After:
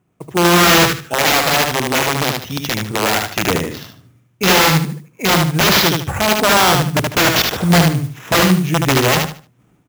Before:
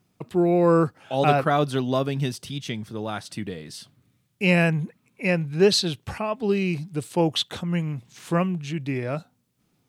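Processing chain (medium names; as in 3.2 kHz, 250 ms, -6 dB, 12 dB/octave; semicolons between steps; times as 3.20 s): local Wiener filter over 9 samples; peaking EQ 220 Hz -6 dB 0.26 oct; level rider gain up to 14 dB; sample-rate reducer 9 kHz, jitter 0%; integer overflow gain 12 dB; high-pass 41 Hz; hum notches 50/100/150 Hz; feedback delay 75 ms, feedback 26%, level -4 dB; 0.88–1.12 s: time-frequency box 510–1100 Hz -12 dB; 1.15–3.48 s: bass shelf 460 Hz -5.5 dB; modulation noise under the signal 23 dB; trim +4 dB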